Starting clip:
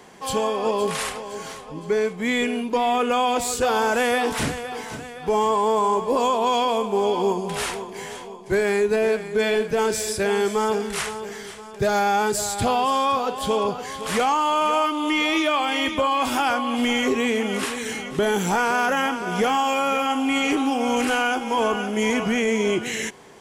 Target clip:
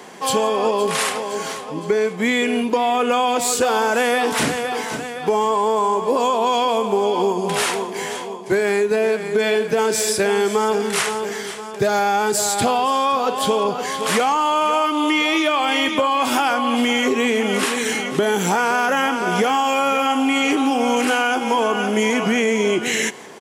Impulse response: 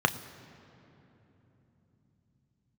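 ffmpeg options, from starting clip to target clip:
-filter_complex "[0:a]highpass=180,acompressor=threshold=-23dB:ratio=6,asplit=2[link_01][link_02];[link_02]aecho=0:1:169:0.0668[link_03];[link_01][link_03]amix=inputs=2:normalize=0,volume=8dB"

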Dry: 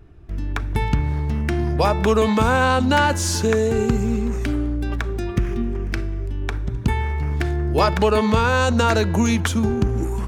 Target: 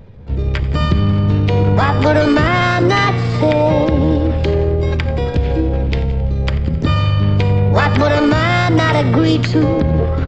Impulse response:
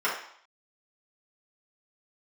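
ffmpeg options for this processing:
-filter_complex "[0:a]equalizer=frequency=100:width_type=o:width=2.5:gain=3,alimiter=limit=-9.5dB:level=0:latency=1:release=96,asplit=2[link_01][link_02];[link_02]aecho=0:1:166|332:0.0944|0.0189[link_03];[link_01][link_03]amix=inputs=2:normalize=0,asetrate=60591,aresample=44100,atempo=0.727827,aresample=11025,aresample=44100,asplit=2[link_04][link_05];[link_05]asplit=6[link_06][link_07][link_08][link_09][link_10][link_11];[link_06]adelay=89,afreqshift=-35,volume=-17.5dB[link_12];[link_07]adelay=178,afreqshift=-70,volume=-21.7dB[link_13];[link_08]adelay=267,afreqshift=-105,volume=-25.8dB[link_14];[link_09]adelay=356,afreqshift=-140,volume=-30dB[link_15];[link_10]adelay=445,afreqshift=-175,volume=-34.1dB[link_16];[link_11]adelay=534,afreqshift=-210,volume=-38.3dB[link_17];[link_12][link_13][link_14][link_15][link_16][link_17]amix=inputs=6:normalize=0[link_18];[link_04][link_18]amix=inputs=2:normalize=0,asplit=4[link_19][link_20][link_21][link_22];[link_20]asetrate=35002,aresample=44100,atempo=1.25992,volume=-15dB[link_23];[link_21]asetrate=52444,aresample=44100,atempo=0.840896,volume=-18dB[link_24];[link_22]asetrate=66075,aresample=44100,atempo=0.66742,volume=-10dB[link_25];[link_19][link_23][link_24][link_25]amix=inputs=4:normalize=0,volume=5dB"

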